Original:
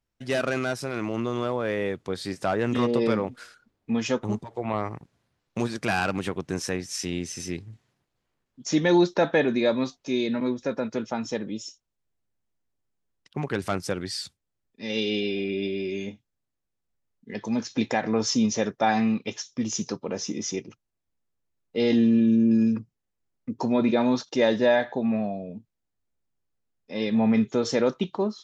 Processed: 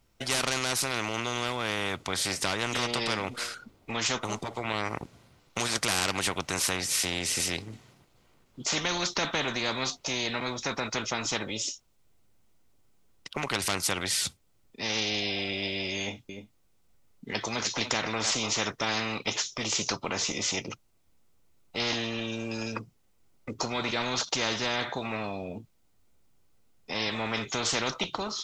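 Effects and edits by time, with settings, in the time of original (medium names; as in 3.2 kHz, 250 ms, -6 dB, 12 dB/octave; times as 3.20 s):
15.99–18.55 s: delay 301 ms -19.5 dB
whole clip: band-stop 1.7 kHz, Q 8.4; spectrum-flattening compressor 4:1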